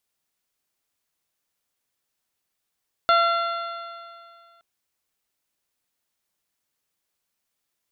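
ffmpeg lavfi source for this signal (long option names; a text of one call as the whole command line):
ffmpeg -f lavfi -i "aevalsrc='0.112*pow(10,-3*t/2.21)*sin(2*PI*678.91*t)+0.178*pow(10,-3*t/2.21)*sin(2*PI*1363.3*t)+0.0282*pow(10,-3*t/2.21)*sin(2*PI*2058.56*t)+0.0251*pow(10,-3*t/2.21)*sin(2*PI*2769.96*t)+0.0447*pow(10,-3*t/2.21)*sin(2*PI*3502.54*t)+0.0299*pow(10,-3*t/2.21)*sin(2*PI*4261.12*t)':duration=1.52:sample_rate=44100" out.wav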